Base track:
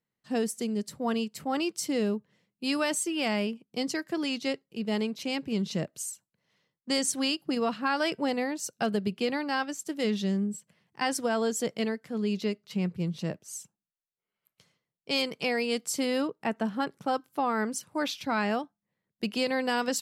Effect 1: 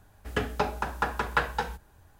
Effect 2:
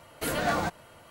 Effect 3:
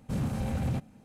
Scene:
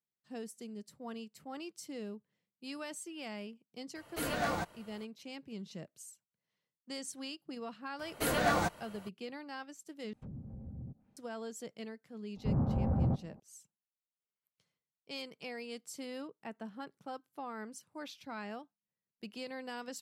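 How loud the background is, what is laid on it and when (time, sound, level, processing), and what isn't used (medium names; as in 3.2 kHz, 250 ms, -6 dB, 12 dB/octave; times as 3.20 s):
base track -15 dB
3.95 s: add 2 -6.5 dB
7.99 s: add 2 -2 dB
10.13 s: replace with 3 -15 dB + low-pass that closes with the level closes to 340 Hz, closed at -27.5 dBFS
12.36 s: add 3 + low-pass 1.1 kHz 24 dB/octave
not used: 1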